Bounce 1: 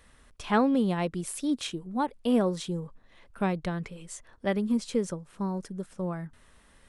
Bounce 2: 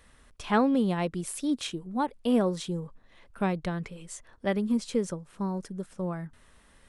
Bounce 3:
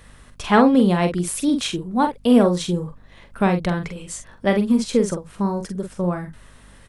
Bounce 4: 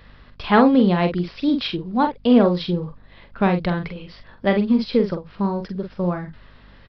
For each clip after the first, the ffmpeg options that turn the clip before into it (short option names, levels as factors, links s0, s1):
-af anull
-filter_complex "[0:a]asplit=2[s0][s1];[s1]adelay=45,volume=0.447[s2];[s0][s2]amix=inputs=2:normalize=0,aeval=exprs='val(0)+0.00112*(sin(2*PI*50*n/s)+sin(2*PI*2*50*n/s)/2+sin(2*PI*3*50*n/s)/3+sin(2*PI*4*50*n/s)/4+sin(2*PI*5*50*n/s)/5)':c=same,volume=2.82"
-af "acrusher=bits=9:mode=log:mix=0:aa=0.000001,aresample=11025,aresample=44100"